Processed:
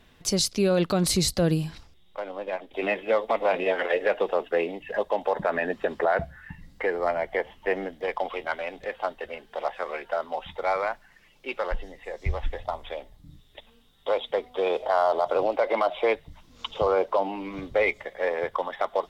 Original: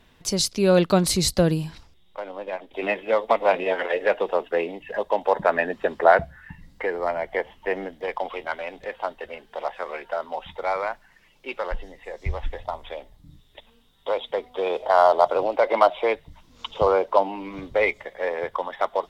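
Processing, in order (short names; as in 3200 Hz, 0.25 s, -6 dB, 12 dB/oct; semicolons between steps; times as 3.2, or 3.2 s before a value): notch 950 Hz, Q 15; limiter -13.5 dBFS, peak gain reduction 10 dB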